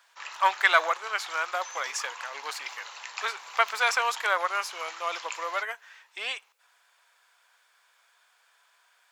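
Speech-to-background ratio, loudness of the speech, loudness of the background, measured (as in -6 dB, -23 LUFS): 12.0 dB, -28.5 LUFS, -40.5 LUFS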